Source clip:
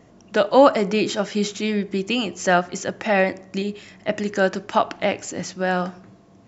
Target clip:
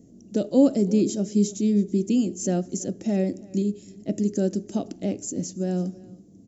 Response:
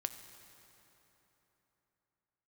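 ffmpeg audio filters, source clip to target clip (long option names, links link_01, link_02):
-filter_complex "[0:a]firequalizer=gain_entry='entry(130,0);entry(230,7);entry(1000,-27);entry(6600,3)':delay=0.05:min_phase=1,asplit=2[link_01][link_02];[link_02]aecho=0:1:327:0.075[link_03];[link_01][link_03]amix=inputs=2:normalize=0,volume=-2dB"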